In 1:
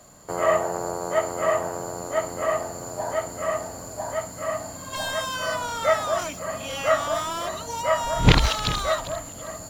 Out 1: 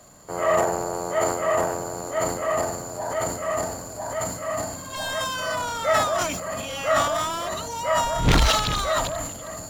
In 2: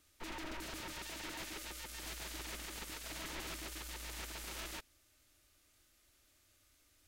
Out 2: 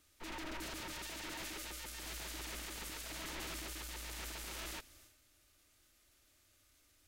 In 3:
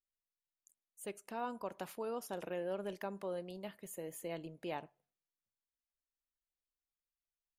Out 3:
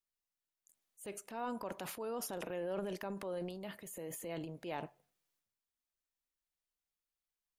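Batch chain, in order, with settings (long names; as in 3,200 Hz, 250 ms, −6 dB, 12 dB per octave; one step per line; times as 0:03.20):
transient designer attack −3 dB, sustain +9 dB
gain into a clipping stage and back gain 12.5 dB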